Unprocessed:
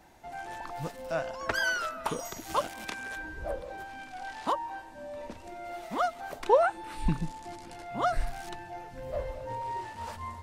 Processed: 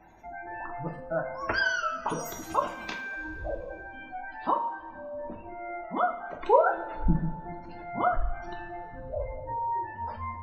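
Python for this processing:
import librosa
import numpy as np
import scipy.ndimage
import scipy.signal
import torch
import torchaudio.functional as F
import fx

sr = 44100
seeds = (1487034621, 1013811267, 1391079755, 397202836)

y = fx.spec_gate(x, sr, threshold_db=-20, keep='strong')
y = fx.rev_double_slope(y, sr, seeds[0], early_s=0.45, late_s=2.5, knee_db=-18, drr_db=1.5)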